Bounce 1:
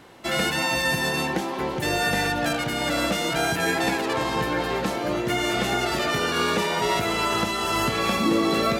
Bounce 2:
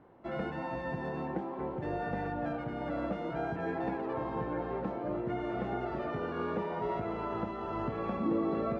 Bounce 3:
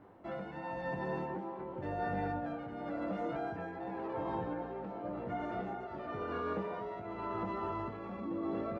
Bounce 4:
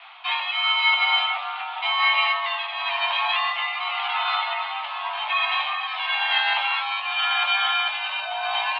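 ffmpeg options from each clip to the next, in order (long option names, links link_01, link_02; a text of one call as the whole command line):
ffmpeg -i in.wav -af "lowpass=1000,volume=-8.5dB" out.wav
ffmpeg -i in.wav -filter_complex "[0:a]alimiter=level_in=6dB:limit=-24dB:level=0:latency=1:release=93,volume=-6dB,tremolo=f=0.93:d=0.52,asplit=2[link_01][link_02];[link_02]aecho=0:1:10|21:0.447|0.531[link_03];[link_01][link_03]amix=inputs=2:normalize=0" out.wav
ffmpeg -i in.wav -af "highpass=frequency=330:width_type=q:width=0.5412,highpass=frequency=330:width_type=q:width=1.307,lowpass=frequency=3300:width_type=q:width=0.5176,lowpass=frequency=3300:width_type=q:width=0.7071,lowpass=frequency=3300:width_type=q:width=1.932,afreqshift=390,aexciter=amount=13.8:drive=5.3:freq=2600,equalizer=frequency=2400:width=0.35:gain=12,volume=4.5dB" out.wav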